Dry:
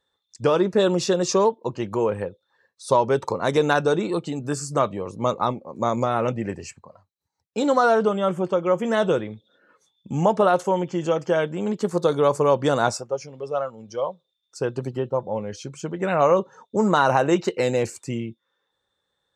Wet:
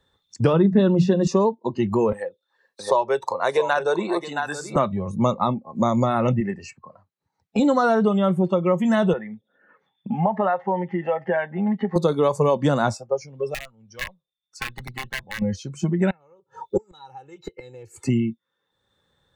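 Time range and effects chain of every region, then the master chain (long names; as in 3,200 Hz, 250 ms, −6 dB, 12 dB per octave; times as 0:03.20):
0:00.53–0:01.27: bass and treble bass +9 dB, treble −14 dB + mains-hum notches 60/120/180/240/300 Hz
0:02.12–0:04.76: high-pass filter 400 Hz + single-tap delay 671 ms −10 dB
0:06.40–0:07.59: high-pass filter 290 Hz 6 dB per octave + high-shelf EQ 6,100 Hz −10 dB
0:09.13–0:11.96: downward compressor 1.5 to 1, threshold −33 dBFS + loudspeaker in its box 220–2,700 Hz, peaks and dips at 320 Hz −5 dB, 790 Hz +7 dB, 1,800 Hz +9 dB
0:13.54–0:15.42: wrap-around overflow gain 18 dB + guitar amp tone stack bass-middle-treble 5-5-5
0:16.10–0:18.07: comb filter 2.3 ms, depth 88% + gate with flip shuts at −13 dBFS, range −32 dB
whole clip: bass and treble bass +11 dB, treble −3 dB; noise reduction from a noise print of the clip's start 14 dB; multiband upward and downward compressor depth 70%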